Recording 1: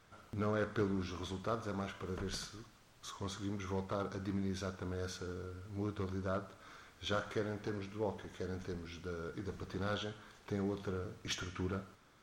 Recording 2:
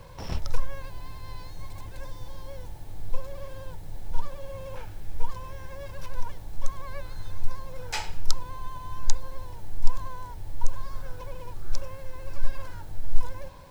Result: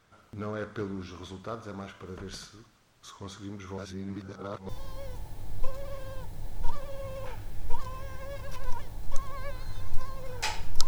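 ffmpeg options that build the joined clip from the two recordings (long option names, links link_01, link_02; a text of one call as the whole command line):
ffmpeg -i cue0.wav -i cue1.wav -filter_complex "[0:a]apad=whole_dur=10.87,atrim=end=10.87,asplit=2[link_01][link_02];[link_01]atrim=end=3.782[link_03];[link_02]atrim=start=3.778:end=4.692,asetpts=PTS-STARTPTS,areverse[link_04];[1:a]atrim=start=2.188:end=8.37[link_05];[link_03][link_04]acrossfade=duration=0.004:curve1=hsin:curve2=hsin[link_06];[link_06][link_05]acrossfade=duration=0.004:curve1=hsin:curve2=hsin" out.wav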